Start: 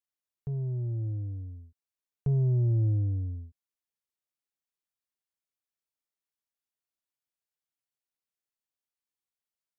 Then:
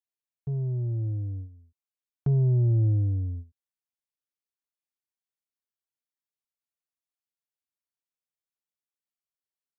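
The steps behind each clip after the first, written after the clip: gate -39 dBFS, range -10 dB; trim +3 dB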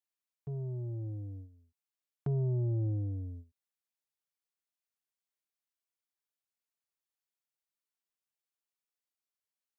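bass shelf 200 Hz -11.5 dB; trim -1 dB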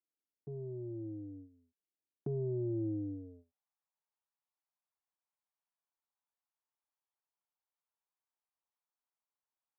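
band-pass sweep 320 Hz -> 910 Hz, 3.12–3.65 s; trim +6 dB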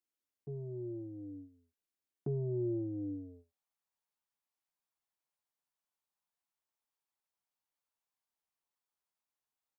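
doubling 14 ms -9.5 dB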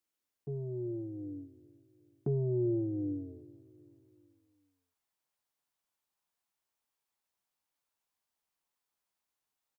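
feedback delay 379 ms, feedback 52%, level -22 dB; trim +4 dB

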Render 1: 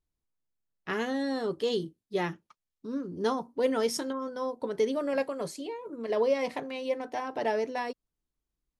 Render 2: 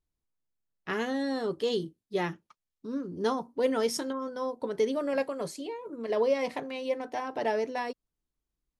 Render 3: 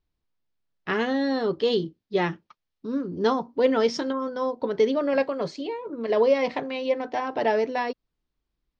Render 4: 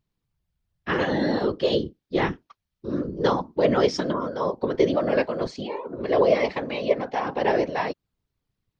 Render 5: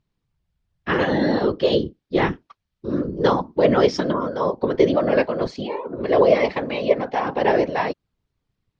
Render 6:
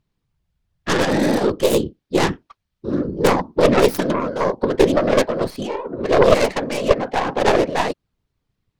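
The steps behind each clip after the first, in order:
no audible change
inverse Chebyshev low-pass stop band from 11 kHz, stop band 50 dB; trim +6 dB
whisper effect; trim +1 dB
distance through air 66 m; trim +4 dB
tracing distortion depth 0.37 ms; trim +2 dB

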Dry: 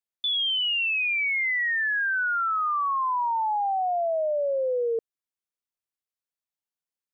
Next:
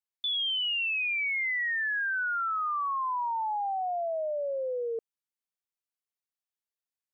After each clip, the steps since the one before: bass shelf 470 Hz -5 dB; trim -4 dB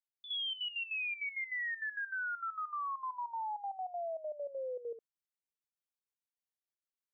trance gate "x.x.xxx." 198 bpm -12 dB; trim -7 dB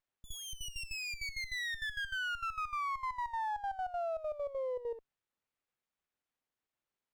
sliding maximum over 9 samples; trim +3 dB

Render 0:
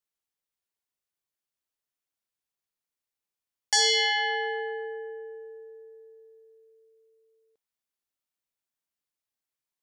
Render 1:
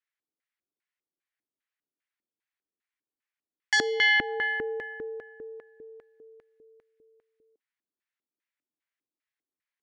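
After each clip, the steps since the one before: LFO band-pass square 2.5 Hz 310–1900 Hz; trim +8.5 dB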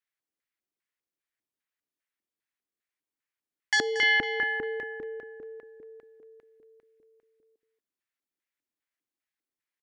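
delay 230 ms -12 dB; trim -1 dB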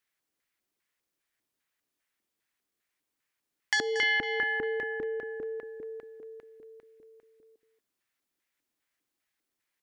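compression 2:1, threshold -41 dBFS, peak gain reduction 11.5 dB; trim +7.5 dB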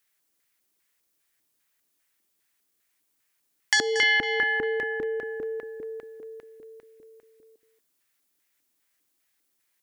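treble shelf 5.7 kHz +9.5 dB; trim +4 dB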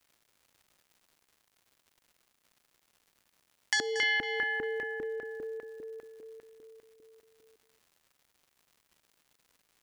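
crackle 250 per s -46 dBFS; trim -7 dB

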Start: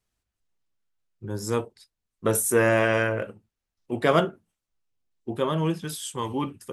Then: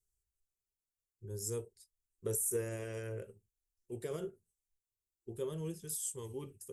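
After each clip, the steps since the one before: amplifier tone stack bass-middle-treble 10-0-10; peak limiter -24.5 dBFS, peak gain reduction 10.5 dB; FFT filter 200 Hz 0 dB, 400 Hz +13 dB, 640 Hz -12 dB, 1.1 kHz -20 dB, 3.9 kHz -19 dB, 7.5 kHz -3 dB; trim +2 dB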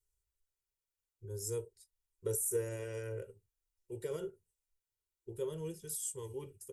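comb 2.1 ms, depth 57%; trim -2 dB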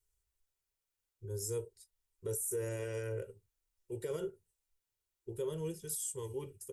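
peak limiter -31 dBFS, peak gain reduction 7.5 dB; trim +2.5 dB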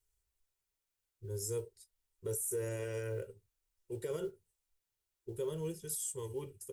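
modulation noise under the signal 33 dB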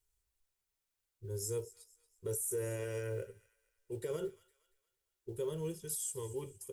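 feedback echo behind a high-pass 231 ms, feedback 38%, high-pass 1.5 kHz, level -17 dB

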